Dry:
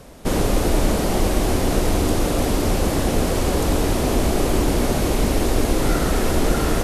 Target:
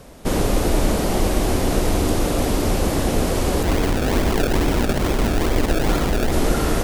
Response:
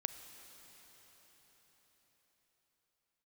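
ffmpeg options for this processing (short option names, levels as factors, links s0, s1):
-filter_complex "[0:a]asplit=3[s0][s1][s2];[s0]afade=t=out:st=3.62:d=0.02[s3];[s1]acrusher=samples=30:mix=1:aa=0.000001:lfo=1:lforange=30:lforate=2.3,afade=t=in:st=3.62:d=0.02,afade=t=out:st=6.31:d=0.02[s4];[s2]afade=t=in:st=6.31:d=0.02[s5];[s3][s4][s5]amix=inputs=3:normalize=0"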